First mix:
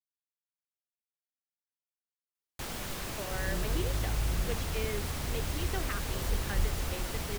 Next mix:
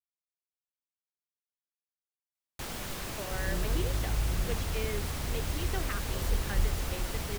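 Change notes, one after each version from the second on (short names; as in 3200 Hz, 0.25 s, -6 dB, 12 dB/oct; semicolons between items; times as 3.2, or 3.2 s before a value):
reverb: on, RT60 1.5 s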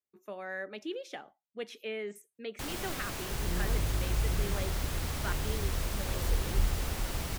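speech: entry -2.90 s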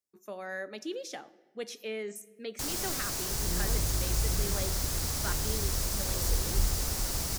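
speech: send on; master: add resonant high shelf 4000 Hz +8 dB, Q 1.5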